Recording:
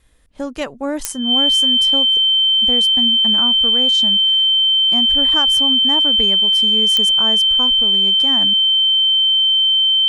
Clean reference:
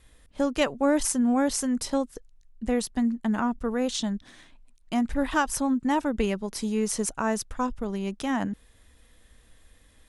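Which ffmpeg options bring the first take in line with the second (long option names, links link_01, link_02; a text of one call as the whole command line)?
ffmpeg -i in.wav -af "adeclick=threshold=4,bandreject=frequency=3100:width=30" out.wav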